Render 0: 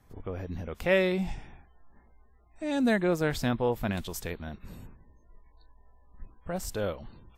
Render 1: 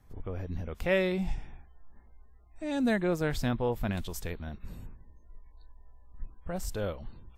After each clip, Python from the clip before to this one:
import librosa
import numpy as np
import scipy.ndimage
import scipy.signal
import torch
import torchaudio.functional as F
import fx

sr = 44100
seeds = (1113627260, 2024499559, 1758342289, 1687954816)

y = fx.low_shelf(x, sr, hz=82.0, db=9.5)
y = y * librosa.db_to_amplitude(-3.0)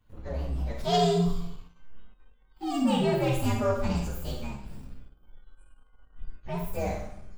y = fx.partial_stretch(x, sr, pct=127)
y = fx.rev_schroeder(y, sr, rt60_s=0.69, comb_ms=31, drr_db=1.5)
y = fx.leveller(y, sr, passes=1)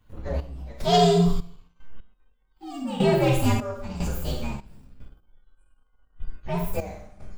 y = fx.step_gate(x, sr, bpm=75, pattern='xx..xxx..x.....x', floor_db=-12.0, edge_ms=4.5)
y = y * librosa.db_to_amplitude(5.5)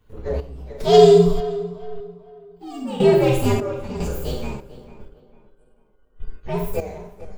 y = fx.peak_eq(x, sr, hz=430.0, db=13.5, octaves=0.3)
y = fx.echo_tape(y, sr, ms=447, feedback_pct=38, wet_db=-14, lp_hz=2000.0, drive_db=2.0, wow_cents=15)
y = y * librosa.db_to_amplitude(1.0)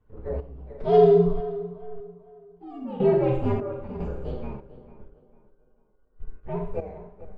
y = scipy.signal.sosfilt(scipy.signal.butter(2, 1500.0, 'lowpass', fs=sr, output='sos'), x)
y = y * librosa.db_to_amplitude(-5.5)